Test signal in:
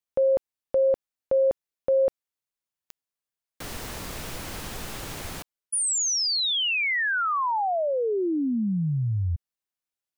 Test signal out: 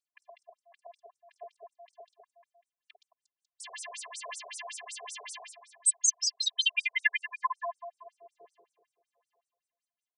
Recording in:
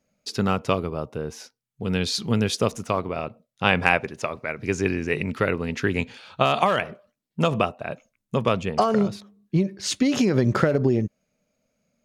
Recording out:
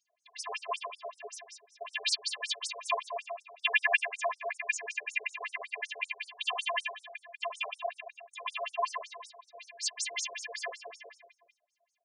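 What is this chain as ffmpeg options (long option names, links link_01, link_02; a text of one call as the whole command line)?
ffmpeg -i in.wav -filter_complex "[0:a]bass=frequency=250:gain=-13,treble=frequency=4000:gain=-6,acrossover=split=330|1400[link_01][link_02][link_03];[link_02]acompressor=threshold=-37dB:ratio=6:attack=6.9:release=38:detection=rms[link_04];[link_01][link_04][link_03]amix=inputs=3:normalize=0,aphaser=in_gain=1:out_gain=1:delay=2.7:decay=0.53:speed=0.7:type=sinusoidal,afftfilt=real='hypot(re,im)*cos(PI*b)':imag='0':win_size=512:overlap=0.75,aexciter=amount=2.6:drive=2.8:freq=7800,asuperstop=centerf=1400:order=12:qfactor=5.8,asplit=2[link_05][link_06];[link_06]aecho=0:1:50|120|218|355.2|547.3:0.631|0.398|0.251|0.158|0.1[link_07];[link_05][link_07]amix=inputs=2:normalize=0,afftfilt=real='re*between(b*sr/1024,550*pow(7500/550,0.5+0.5*sin(2*PI*5.3*pts/sr))/1.41,550*pow(7500/550,0.5+0.5*sin(2*PI*5.3*pts/sr))*1.41)':imag='im*between(b*sr/1024,550*pow(7500/550,0.5+0.5*sin(2*PI*5.3*pts/sr))/1.41,550*pow(7500/550,0.5+0.5*sin(2*PI*5.3*pts/sr))*1.41)':win_size=1024:overlap=0.75,volume=7dB" out.wav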